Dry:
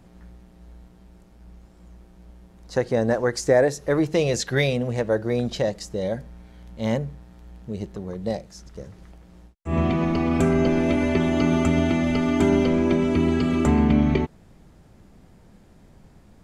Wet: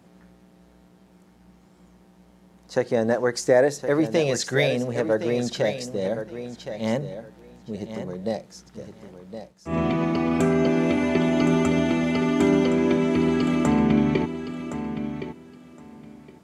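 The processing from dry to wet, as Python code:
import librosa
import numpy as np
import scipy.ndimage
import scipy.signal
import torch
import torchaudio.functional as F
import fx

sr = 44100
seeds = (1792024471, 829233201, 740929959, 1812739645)

y = scipy.signal.sosfilt(scipy.signal.butter(2, 150.0, 'highpass', fs=sr, output='sos'), x)
y = fx.echo_feedback(y, sr, ms=1066, feedback_pct=18, wet_db=-10)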